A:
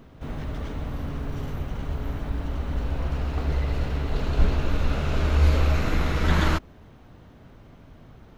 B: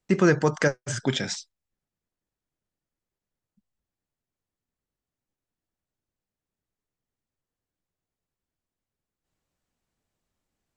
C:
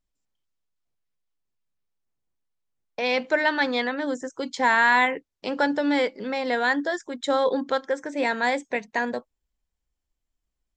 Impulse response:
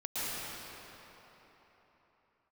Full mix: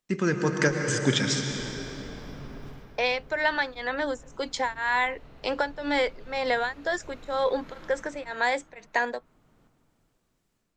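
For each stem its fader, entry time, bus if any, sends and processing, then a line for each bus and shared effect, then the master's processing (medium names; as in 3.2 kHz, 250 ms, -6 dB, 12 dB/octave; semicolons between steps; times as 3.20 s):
-9.0 dB, 1.30 s, send -15.5 dB, compression 3:1, threshold -25 dBFS, peak gain reduction 10 dB; auto duck -15 dB, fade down 0.30 s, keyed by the third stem
-7.0 dB, 0.00 s, send -8 dB, peaking EQ 680 Hz -8 dB 0.96 oct; level rider gain up to 11 dB
+3.0 dB, 0.00 s, no send, high-pass 410 Hz 12 dB/octave; compression, threshold -22 dBFS, peak gain reduction 8 dB; tremolo of two beating tones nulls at 2 Hz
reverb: on, RT60 4.0 s, pre-delay 106 ms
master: peaking EQ 69 Hz -13.5 dB 0.75 oct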